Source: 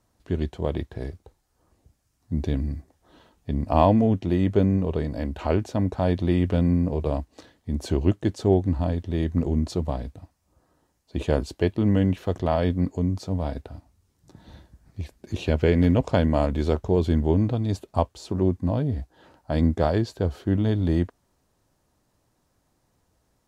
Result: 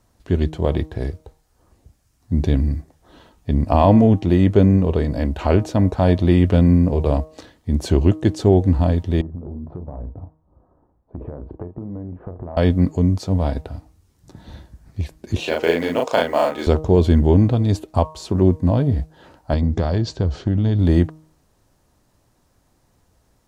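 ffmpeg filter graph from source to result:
-filter_complex "[0:a]asettb=1/sr,asplit=3[s0][s1][s2];[s0]atrim=end=9.214[s3];[s1]atrim=start=9.21:end=12.57,asetpts=PTS-STARTPTS,afade=t=in:d=0.004:c=qsin,afade=t=out:st=3.356:d=0.004:c=qsin,lowpass=f=1100:w=0.5412,lowpass=f=1100:w=1.3066,asplit=2[s4][s5];[s5]adelay=34,volume=0.376[s6];[s4][s6]amix=inputs=2:normalize=0,atrim=end_sample=148176,acompressor=threshold=0.02:ratio=12:attack=3.2:release=140:knee=1:detection=peak[s7];[s2]atrim=start=12.566[s8];[s3][s7]acrossfade=d=0.004:c1=hsin:c2=qsin[s9];[s9][s8]acrossfade=d=0.004:c1=qsin:c2=hsin,asettb=1/sr,asplit=3[s10][s11][s12];[s10]atrim=end=15.404[s13];[s11]atrim=start=15.4:end=16.67,asetpts=PTS-STARTPTS,afade=t=in:d=0.004:c=qsin,afade=t=out:st=1.266:d=0.004:c=qsin,highpass=500,acrusher=bits=8:mode=log:mix=0:aa=0.000001,asplit=2[s14][s15];[s15]adelay=36,volume=0.794[s16];[s14][s16]amix=inputs=2:normalize=0,atrim=end_sample=56007[s17];[s12]atrim=start=16.666[s18];[s13][s17]acrossfade=d=0.004:c1=hsin:c2=qsin[s19];[s19][s18]acrossfade=d=0.004:c1=qsin:c2=hsin,asettb=1/sr,asplit=3[s20][s21][s22];[s20]atrim=end=19.534[s23];[s21]atrim=start=19.53:end=20.79,asetpts=PTS-STARTPTS,afade=t=in:d=0.004:c=qsin,afade=t=out:st=1.256:d=0.004:c=qsin,bass=f=250:g=6,treble=f=4000:g=6,acompressor=threshold=0.0794:ratio=5:attack=3.2:release=140:knee=1:detection=peak,lowpass=f=6300:w=0.5412,lowpass=f=6300:w=1.3066[s24];[s22]atrim=start=20.786[s25];[s23][s24]acrossfade=d=0.004:c1=hsin:c2=qsin[s26];[s26][s25]acrossfade=d=0.004:c1=qsin:c2=hsin,lowshelf=f=68:g=5,bandreject=f=156.6:t=h:w=4,bandreject=f=313.2:t=h:w=4,bandreject=f=469.8:t=h:w=4,bandreject=f=626.4:t=h:w=4,bandreject=f=783:t=h:w=4,bandreject=f=939.6:t=h:w=4,bandreject=f=1096.2:t=h:w=4,bandreject=f=1252.8:t=h:w=4,alimiter=level_in=2.37:limit=0.891:release=50:level=0:latency=1,volume=0.891"

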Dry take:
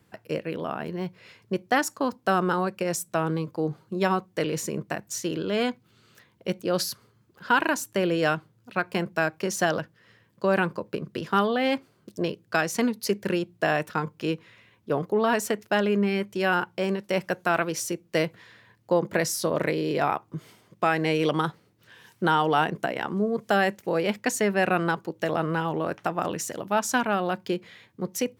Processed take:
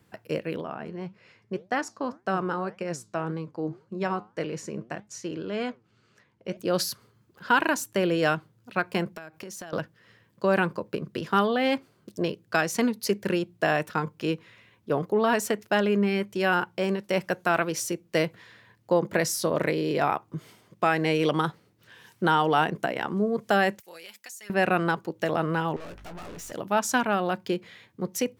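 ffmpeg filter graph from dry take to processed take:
-filter_complex "[0:a]asettb=1/sr,asplit=3[s0][s1][s2];[s0]atrim=end=0.614[s3];[s1]atrim=start=0.61:end=6.57,asetpts=PTS-STARTPTS,afade=t=in:d=0.004:c=qsin,afade=t=out:st=5.956:d=0.004:c=qsin,lowpass=6300,equalizer=f=3600:t=o:w=0.51:g=-6.5,flanger=delay=4.7:depth=5:regen=83:speed=1.8:shape=sinusoidal[s4];[s2]atrim=start=6.566[s5];[s3][s4]acrossfade=d=0.004:c1=hsin:c2=qsin[s6];[s6][s5]acrossfade=d=0.004:c1=qsin:c2=hsin,asettb=1/sr,asplit=3[s7][s8][s9];[s7]atrim=end=9.164[s10];[s8]atrim=start=9.16:end=9.73,asetpts=PTS-STARTPTS,afade=t=in:d=0.004:c=qsin,afade=t=out:st=0.566:d=0.004:c=qsin,highshelf=f=11000:g=4.5,acompressor=threshold=0.0158:ratio=12:attack=3.2:release=140:knee=1:detection=peak[s11];[s9]atrim=start=9.726[s12];[s10][s11]acrossfade=d=0.004:c1=hsin:c2=qsin[s13];[s13][s12]acrossfade=d=0.004:c1=qsin:c2=hsin,asettb=1/sr,asplit=3[s14][s15][s16];[s14]atrim=end=23.804[s17];[s15]atrim=start=23.8:end=24.5,asetpts=PTS-STARTPTS,afade=t=in:d=0.004:c=qsin,afade=t=out:st=0.696:d=0.004:c=qsin,aderivative,aecho=1:1:5.6:0.51,atrim=end_sample=30870,acompressor=threshold=0.0112:ratio=8:attack=3.2:release=140:knee=1:detection=peak[s18];[s16]atrim=start=24.496[s19];[s17][s18]acrossfade=d=0.004:c1=hsin:c2=qsin[s20];[s20][s19]acrossfade=d=0.004:c1=qsin:c2=hsin,asettb=1/sr,asplit=3[s21][s22][s23];[s21]atrim=end=25.764[s24];[s22]atrim=start=25.76:end=26.52,asetpts=PTS-STARTPTS,afade=t=in:d=0.004:c=qsin,afade=t=out:st=0.756:d=0.004:c=qsin,aeval=exprs='val(0)+0.00447*(sin(2*PI*50*n/s)+sin(2*PI*2*50*n/s)/2+sin(2*PI*3*50*n/s)/3+sin(2*PI*4*50*n/s)/4+sin(2*PI*5*50*n/s)/5)':c=same,aeval=exprs='(tanh(100*val(0)+0.25)-tanh(0.25))/100':c=same,asplit=2[s25][s26];[s26]adelay=17,volume=0.398[s27];[s25][s27]amix=inputs=2:normalize=0,atrim=end_sample=33516[s28];[s23]atrim=start=26.516[s29];[s24][s28]acrossfade=d=0.004:c1=hsin:c2=qsin[s30];[s30][s29]acrossfade=d=0.004:c1=qsin:c2=hsin"

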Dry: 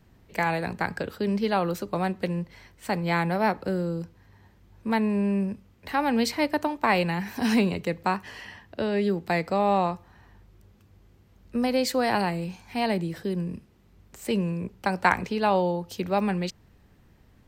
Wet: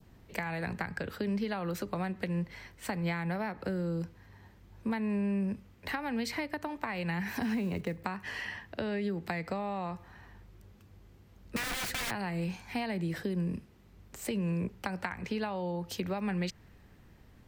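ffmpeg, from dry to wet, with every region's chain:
-filter_complex "[0:a]asettb=1/sr,asplit=3[s0][s1][s2];[s0]atrim=end=7.424[s3];[s1]atrim=start=7.42:end=8.04,asetpts=PTS-STARTPTS,afade=t=in:d=0.004:c=qsin,afade=t=out:st=0.616:d=0.004:c=qsin,lowpass=f=3000:p=1,equalizer=f=2300:w=0.32:g=-4,acrusher=bits=7:mode=log:mix=0:aa=0.000001[s4];[s2]atrim=start=8.036[s5];[s3][s4]acrossfade=d=0.004:c1=hsin:c2=qsin[s6];[s6][s5]acrossfade=d=0.004:c1=qsin:c2=hsin,asettb=1/sr,asplit=3[s7][s8][s9];[s7]atrim=end=11.564[s10];[s8]atrim=start=11.56:end=12.11,asetpts=PTS-STARTPTS,afade=t=in:d=0.004:c=qsin,afade=t=out:st=0.546:d=0.004:c=qsin,lowshelf=f=250:g=11,aeval=exprs='(mod(16.8*val(0)+1,2)-1)/16.8':c=same[s11];[s9]atrim=start=12.106[s12];[s10][s11]acrossfade=d=0.004:c1=hsin:c2=qsin[s13];[s13][s12]acrossfade=d=0.004:c1=qsin:c2=hsin,acompressor=threshold=0.0562:ratio=6,adynamicequalizer=threshold=0.00501:dfrequency=1900:dqfactor=1.4:tfrequency=1900:tqfactor=1.4:attack=5:release=100:ratio=0.375:range=3:mode=boostabove:tftype=bell,acrossover=split=180[s14][s15];[s15]acompressor=threshold=0.0224:ratio=6[s16];[s14][s16]amix=inputs=2:normalize=0"

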